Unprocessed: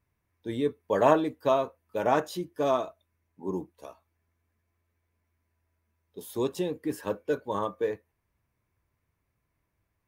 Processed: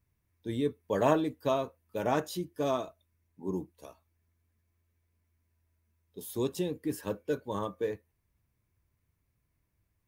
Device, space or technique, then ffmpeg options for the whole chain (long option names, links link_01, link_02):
smiley-face EQ: -af "lowshelf=frequency=180:gain=3,equalizer=frequency=920:width_type=o:width=2.8:gain=-6,highshelf=frequency=9700:gain=3"